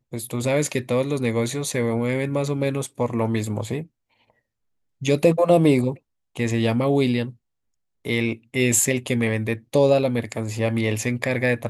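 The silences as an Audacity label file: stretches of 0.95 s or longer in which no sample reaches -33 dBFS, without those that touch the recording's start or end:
3.830000	5.020000	silence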